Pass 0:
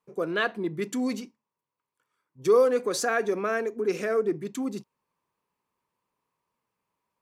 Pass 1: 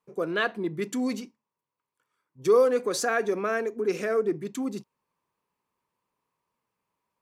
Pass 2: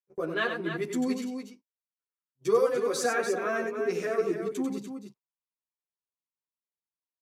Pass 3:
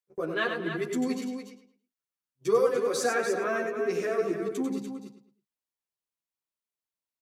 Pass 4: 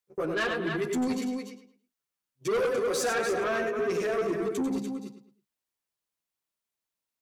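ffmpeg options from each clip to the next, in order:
-af anull
-filter_complex "[0:a]agate=range=-26dB:threshold=-44dB:ratio=16:detection=peak,aecho=1:1:93.29|291.5:0.447|0.398,asplit=2[a][b];[b]adelay=10.5,afreqshift=0.34[c];[a][c]amix=inputs=2:normalize=1"
-filter_complex "[0:a]asplit=2[a][b];[b]adelay=108,lowpass=f=4.3k:p=1,volume=-10.5dB,asplit=2[c][d];[d]adelay=108,lowpass=f=4.3k:p=1,volume=0.31,asplit=2[e][f];[f]adelay=108,lowpass=f=4.3k:p=1,volume=0.31[g];[a][c][e][g]amix=inputs=4:normalize=0"
-af "asoftclip=type=tanh:threshold=-27.5dB,volume=4dB"

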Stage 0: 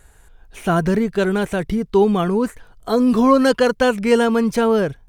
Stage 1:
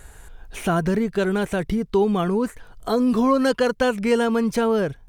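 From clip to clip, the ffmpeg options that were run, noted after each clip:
-af "acompressor=threshold=-41dB:ratio=1.5,volume=6dB"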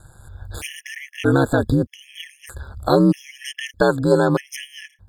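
-af "aeval=exprs='val(0)*sin(2*PI*70*n/s)':c=same,dynaudnorm=f=110:g=7:m=13dB,afftfilt=real='re*gt(sin(2*PI*0.8*pts/sr)*(1-2*mod(floor(b*sr/1024/1700),2)),0)':imag='im*gt(sin(2*PI*0.8*pts/sr)*(1-2*mod(floor(b*sr/1024/1700),2)),0)':win_size=1024:overlap=0.75"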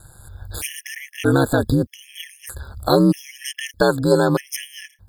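-af "aexciter=amount=2.3:drive=3:freq=4k"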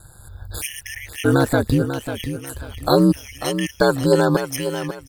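-af "aecho=1:1:543|1086|1629:0.335|0.0938|0.0263"

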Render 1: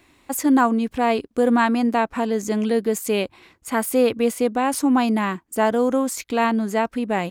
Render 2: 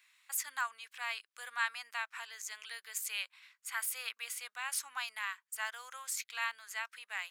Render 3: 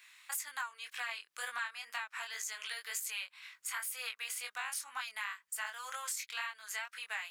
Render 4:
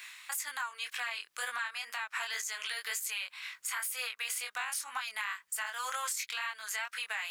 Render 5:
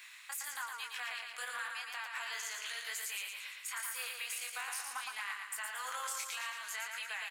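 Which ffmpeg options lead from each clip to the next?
-af "highpass=f=1.4k:w=0.5412,highpass=f=1.4k:w=1.3066,volume=-7.5dB"
-af "acompressor=threshold=-45dB:ratio=6,flanger=delay=20:depth=4.6:speed=2,volume=11.5dB"
-af "alimiter=level_in=9dB:limit=-24dB:level=0:latency=1:release=150,volume=-9dB,areverse,acompressor=mode=upward:threshold=-47dB:ratio=2.5,areverse,volume=8dB"
-af "aecho=1:1:114|228|342|456|570|684|798|912:0.596|0.351|0.207|0.122|0.0722|0.0426|0.0251|0.0148,volume=-5.5dB"

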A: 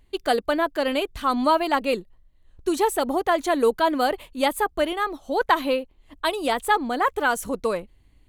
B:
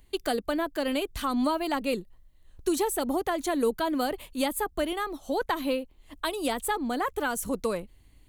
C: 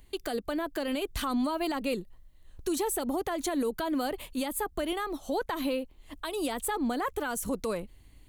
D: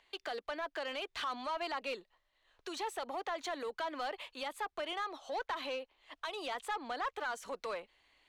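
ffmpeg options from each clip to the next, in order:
-filter_complex "[0:a]highshelf=f=5.5k:g=9.5,acrossover=split=320[a][b];[b]acompressor=threshold=-31dB:ratio=2.5[c];[a][c]amix=inputs=2:normalize=0"
-af "alimiter=limit=-24dB:level=0:latency=1:release=99,volume=2dB"
-filter_complex "[0:a]acrossover=split=470 5900:gain=0.126 1 0.112[a][b][c];[a][b][c]amix=inputs=3:normalize=0,asplit=2[d][e];[e]highpass=f=720:p=1,volume=13dB,asoftclip=type=tanh:threshold=-22.5dB[f];[d][f]amix=inputs=2:normalize=0,lowpass=f=4.5k:p=1,volume=-6dB,volume=-6.5dB"

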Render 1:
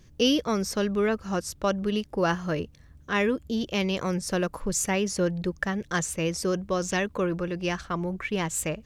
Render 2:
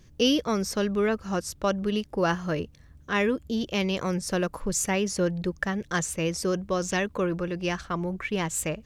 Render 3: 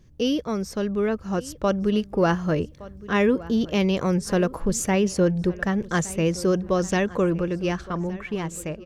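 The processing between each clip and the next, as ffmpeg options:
-af anull
-filter_complex "[0:a]tiltshelf=f=970:g=3.5,dynaudnorm=f=210:g=13:m=6dB,asplit=2[a][b];[b]adelay=1166,lowpass=f=3.6k:p=1,volume=-18.5dB,asplit=2[c][d];[d]adelay=1166,lowpass=f=3.6k:p=1,volume=0.35,asplit=2[e][f];[f]adelay=1166,lowpass=f=3.6k:p=1,volume=0.35[g];[a][c][e][g]amix=inputs=4:normalize=0,volume=-3dB"

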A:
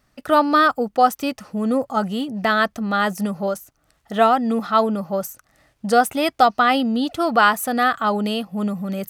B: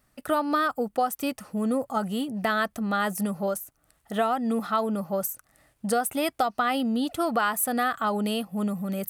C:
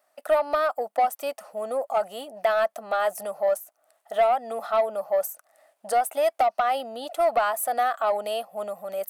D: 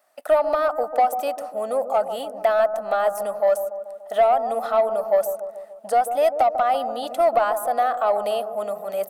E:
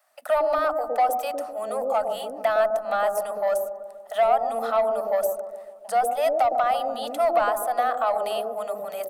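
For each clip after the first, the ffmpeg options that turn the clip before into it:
-af "highshelf=f=7.4k:t=q:w=1.5:g=6.5,acompressor=threshold=-17dB:ratio=6,volume=-4dB"
-af "highpass=f=640:t=q:w=4.9,asoftclip=type=tanh:threshold=-11dB,volume=-3dB"
-filter_complex "[0:a]acrossover=split=1100[a][b];[a]aecho=1:1:145|290|435|580|725|870|1015:0.376|0.214|0.122|0.0696|0.0397|0.0226|0.0129[c];[b]alimiter=level_in=4.5dB:limit=-24dB:level=0:latency=1:release=291,volume=-4.5dB[d];[c][d]amix=inputs=2:normalize=0,volume=4dB"
-filter_complex "[0:a]acrossover=split=190|570[a][b][c];[a]adelay=40[d];[b]adelay=110[e];[d][e][c]amix=inputs=3:normalize=0"

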